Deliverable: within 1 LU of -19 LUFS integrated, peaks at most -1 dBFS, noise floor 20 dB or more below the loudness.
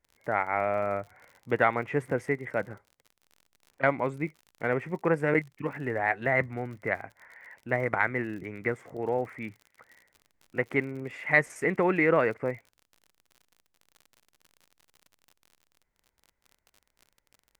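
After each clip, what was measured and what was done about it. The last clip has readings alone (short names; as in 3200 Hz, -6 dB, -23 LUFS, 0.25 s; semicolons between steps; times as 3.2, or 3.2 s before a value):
ticks 50/s; loudness -29.0 LUFS; peak -8.0 dBFS; loudness target -19.0 LUFS
-> de-click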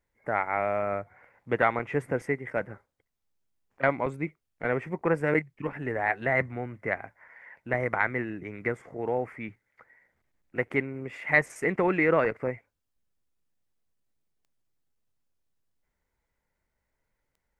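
ticks 0.11/s; loudness -29.0 LUFS; peak -8.0 dBFS; loudness target -19.0 LUFS
-> gain +10 dB; limiter -1 dBFS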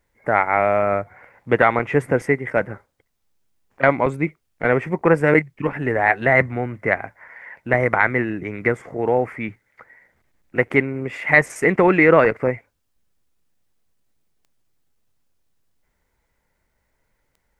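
loudness -19.5 LUFS; peak -1.0 dBFS; noise floor -71 dBFS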